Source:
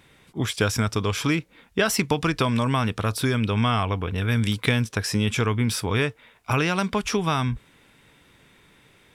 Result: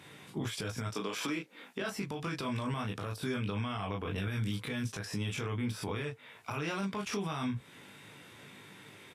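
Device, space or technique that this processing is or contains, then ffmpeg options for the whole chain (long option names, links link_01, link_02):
podcast mastering chain: -filter_complex "[0:a]asettb=1/sr,asplit=3[link_01][link_02][link_03];[link_01]atrim=end=0.904[link_04];[link_02]atrim=start=0.9:end=1.8,asetpts=PTS-STARTPTS,afade=type=in:duration=0.004:curve=qsin,afade=type=out:start_time=0.896:duration=0.004:curve=qsin,highpass=frequency=210:width=0.5412,highpass=frequency=210:width=1.3066[link_05];[link_03]atrim=start=1.796[link_06];[link_04][link_05]acrossfade=duration=0.004:curve1=hsin:curve2=qsin[link_07];[link_07][link_06]acrossfade=duration=0.004:curve1=qsin:curve2=hsin,highpass=frequency=99:width=0.5412,highpass=frequency=99:width=1.3066,aecho=1:1:20|36:0.668|0.501,deesser=0.65,acompressor=threshold=-34dB:ratio=3,alimiter=level_in=3dB:limit=-24dB:level=0:latency=1:release=71,volume=-3dB,volume=1.5dB" -ar 32000 -c:a libmp3lame -b:a 96k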